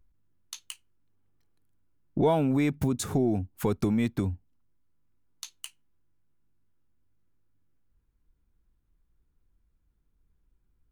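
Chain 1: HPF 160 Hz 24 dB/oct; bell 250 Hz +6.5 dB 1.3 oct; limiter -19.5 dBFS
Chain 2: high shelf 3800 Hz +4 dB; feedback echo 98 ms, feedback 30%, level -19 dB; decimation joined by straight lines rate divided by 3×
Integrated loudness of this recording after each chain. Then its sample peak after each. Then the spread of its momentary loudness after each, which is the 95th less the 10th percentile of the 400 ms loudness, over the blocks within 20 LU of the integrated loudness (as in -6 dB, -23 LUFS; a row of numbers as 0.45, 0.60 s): -28.5, -27.5 LUFS; -19.5, -13.5 dBFS; 20, 20 LU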